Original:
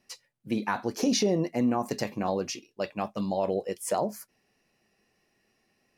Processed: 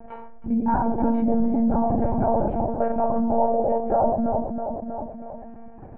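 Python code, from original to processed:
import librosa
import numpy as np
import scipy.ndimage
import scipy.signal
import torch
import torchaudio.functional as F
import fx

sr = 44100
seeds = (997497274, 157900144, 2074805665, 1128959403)

p1 = scipy.signal.sosfilt(scipy.signal.butter(4, 1000.0, 'lowpass', fs=sr, output='sos'), x)
p2 = p1 + 0.69 * np.pad(p1, (int(1.3 * sr / 1000.0), 0))[:len(p1)]
p3 = p2 + fx.echo_feedback(p2, sr, ms=323, feedback_pct=39, wet_db=-11.5, dry=0)
p4 = fx.room_shoebox(p3, sr, seeds[0], volume_m3=720.0, walls='furnished', distance_m=2.4)
p5 = fx.dynamic_eq(p4, sr, hz=290.0, q=0.83, threshold_db=-32.0, ratio=4.0, max_db=-4)
p6 = fx.level_steps(p5, sr, step_db=17)
p7 = p5 + F.gain(torch.from_numpy(p6), 2.0).numpy()
p8 = fx.lpc_monotone(p7, sr, seeds[1], pitch_hz=230.0, order=16)
y = fx.env_flatten(p8, sr, amount_pct=50)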